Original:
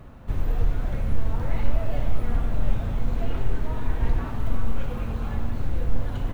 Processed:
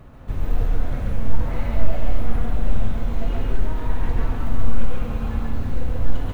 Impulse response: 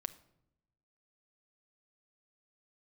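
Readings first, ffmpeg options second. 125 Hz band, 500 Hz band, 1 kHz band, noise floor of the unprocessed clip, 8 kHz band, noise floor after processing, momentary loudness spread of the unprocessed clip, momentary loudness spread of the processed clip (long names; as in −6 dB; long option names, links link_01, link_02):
+2.0 dB, +2.5 dB, +2.5 dB, −32 dBFS, can't be measured, −28 dBFS, 3 LU, 2 LU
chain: -filter_complex "[0:a]asplit=2[link_01][link_02];[1:a]atrim=start_sample=2205,asetrate=66150,aresample=44100,adelay=137[link_03];[link_02][link_03]afir=irnorm=-1:irlink=0,volume=4dB[link_04];[link_01][link_04]amix=inputs=2:normalize=0"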